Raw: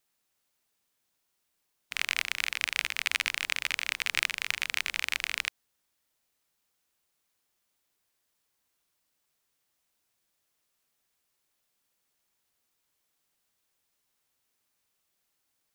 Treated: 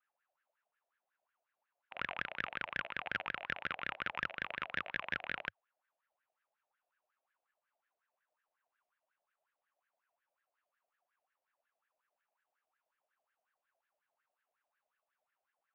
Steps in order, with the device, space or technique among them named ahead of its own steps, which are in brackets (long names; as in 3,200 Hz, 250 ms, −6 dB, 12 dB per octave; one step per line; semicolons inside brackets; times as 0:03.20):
wah-wah guitar rig (LFO wah 5.5 Hz 640–1,700 Hz, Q 9.6; tube saturation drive 38 dB, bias 0.55; loudspeaker in its box 98–3,800 Hz, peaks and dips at 100 Hz −7 dB, 550 Hz +6 dB, 2,700 Hz +5 dB)
level +12.5 dB